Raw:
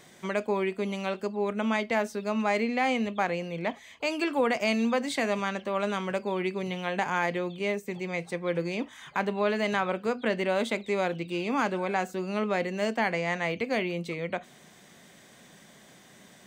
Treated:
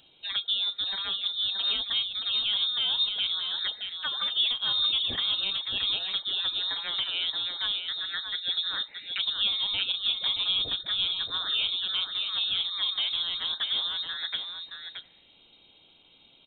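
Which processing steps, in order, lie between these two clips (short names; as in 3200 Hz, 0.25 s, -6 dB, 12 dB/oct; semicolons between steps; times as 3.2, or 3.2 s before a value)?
envelope phaser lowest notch 320 Hz, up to 2100 Hz, full sweep at -24.5 dBFS; echo 0.624 s -6.5 dB; inverted band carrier 3900 Hz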